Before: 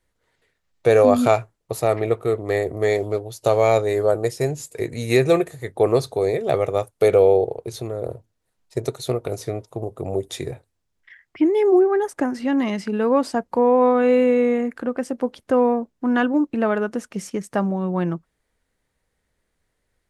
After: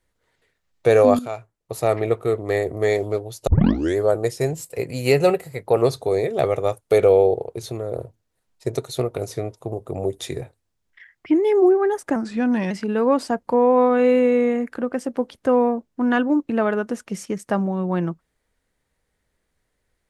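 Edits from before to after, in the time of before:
1.19–1.87 fade in quadratic, from -14.5 dB
3.47 tape start 0.50 s
4.53–5.92 speed 108%
12.26–12.75 speed 89%

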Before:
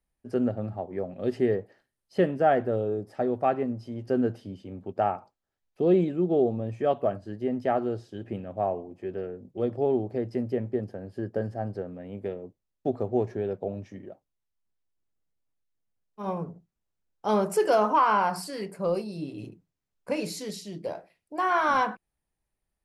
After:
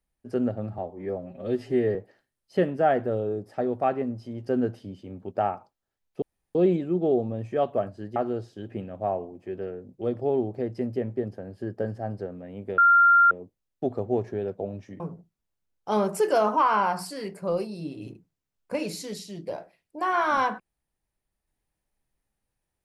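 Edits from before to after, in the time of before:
0.78–1.56 stretch 1.5×
5.83 insert room tone 0.33 s
7.44–7.72 cut
12.34 add tone 1390 Hz -13.5 dBFS 0.53 s
14.03–16.37 cut

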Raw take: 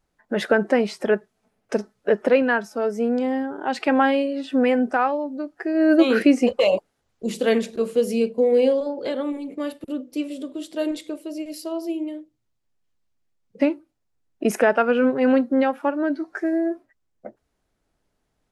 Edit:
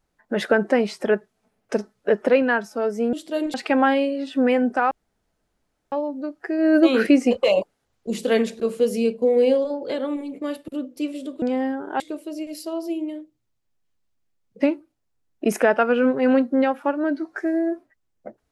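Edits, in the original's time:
3.13–3.71 swap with 10.58–10.99
5.08 insert room tone 1.01 s

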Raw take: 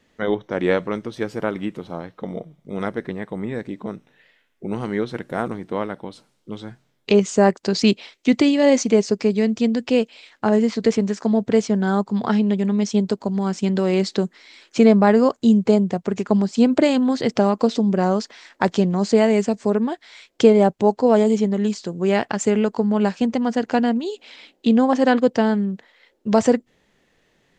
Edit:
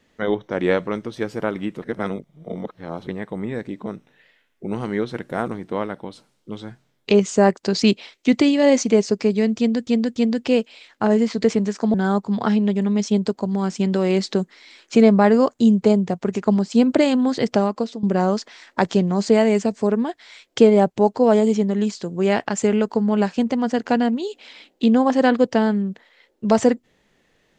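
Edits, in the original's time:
1.82–3.07 reverse
9.58–9.87 loop, 3 plays
11.36–11.77 cut
17.36–17.86 fade out, to -16 dB

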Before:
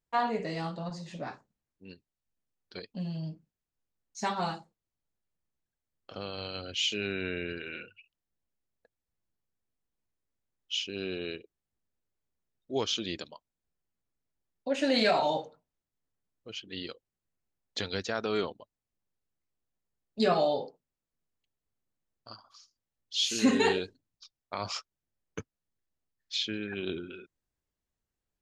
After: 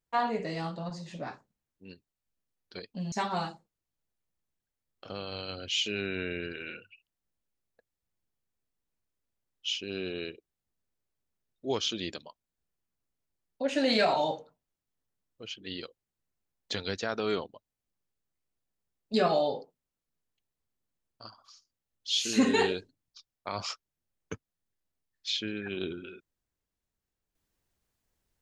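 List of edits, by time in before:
3.12–4.18 cut

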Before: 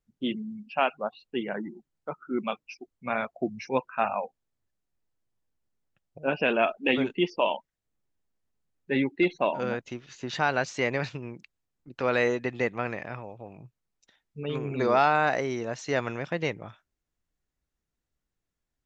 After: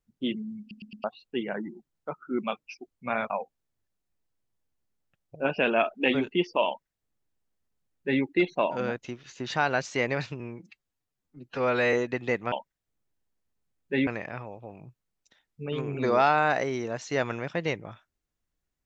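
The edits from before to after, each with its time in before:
0.6 stutter in place 0.11 s, 4 plays
3.3–4.13 cut
7.5–9.05 copy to 12.84
11.23–12.25 stretch 1.5×

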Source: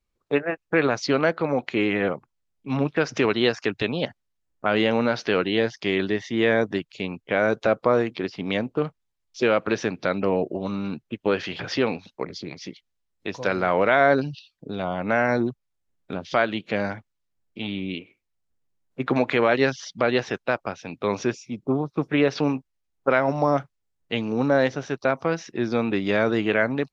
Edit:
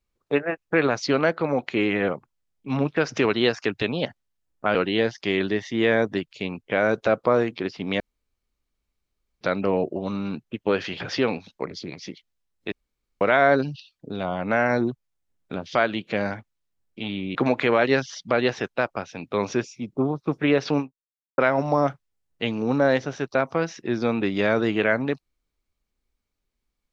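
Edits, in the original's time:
4.75–5.34 cut
8.59–10 room tone
13.31–13.8 room tone
17.94–19.05 cut
22.49–23.08 fade out exponential

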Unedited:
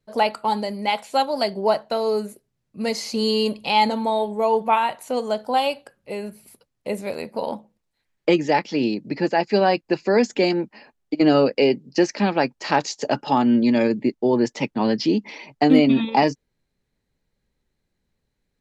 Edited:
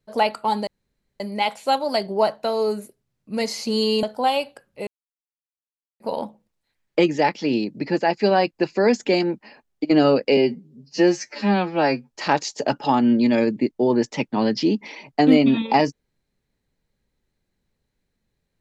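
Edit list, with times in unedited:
0.67 insert room tone 0.53 s
3.5–5.33 cut
6.17–7.3 mute
11.67–12.54 stretch 2×

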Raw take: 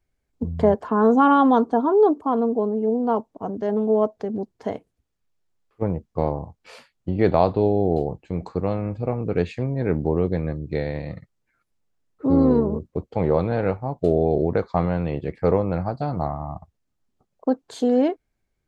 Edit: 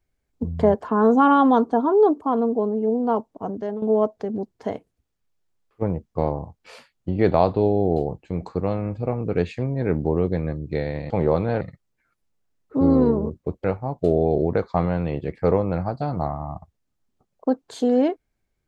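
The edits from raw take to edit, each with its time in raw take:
3.52–3.82 fade out, to -11 dB
13.13–13.64 move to 11.1

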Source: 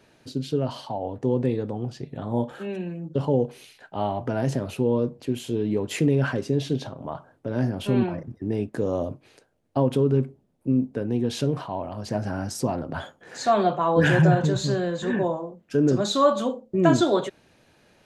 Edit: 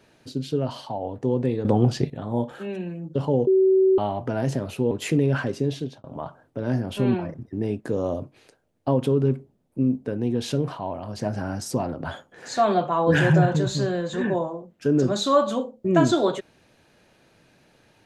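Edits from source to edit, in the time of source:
1.65–2.1 gain +11.5 dB
3.47–3.98 bleep 380 Hz -14 dBFS
4.91–5.8 cut
6.41–6.93 fade out equal-power

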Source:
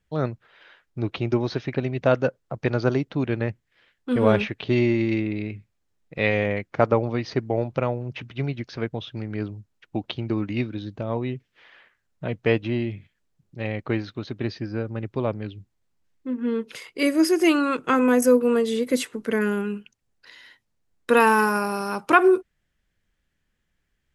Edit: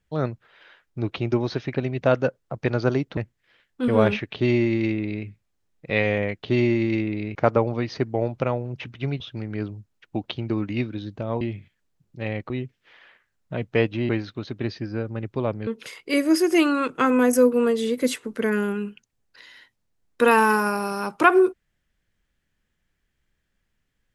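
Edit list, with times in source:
3.17–3.45 cut
4.62–5.54 copy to 6.71
8.56–9 cut
12.8–13.89 move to 11.21
15.47–16.56 cut

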